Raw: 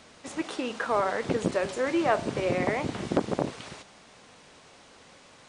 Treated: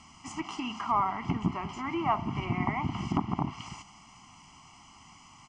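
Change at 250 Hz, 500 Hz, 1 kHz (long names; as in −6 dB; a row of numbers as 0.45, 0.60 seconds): −2.0, −13.5, +1.0 decibels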